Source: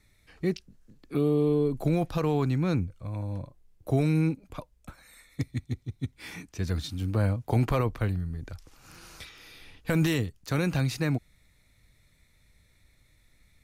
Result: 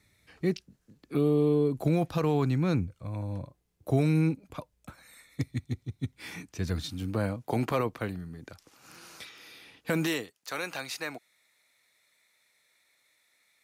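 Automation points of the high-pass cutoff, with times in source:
6.71 s 82 Hz
7.41 s 190 Hz
9.91 s 190 Hz
10.36 s 630 Hz

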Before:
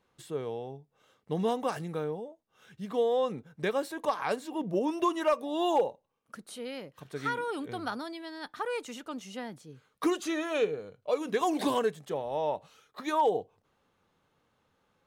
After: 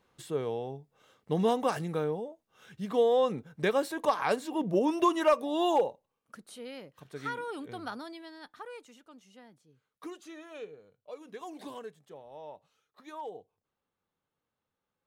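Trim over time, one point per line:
5.39 s +2.5 dB
6.45 s -4 dB
8.17 s -4 dB
9.01 s -15 dB

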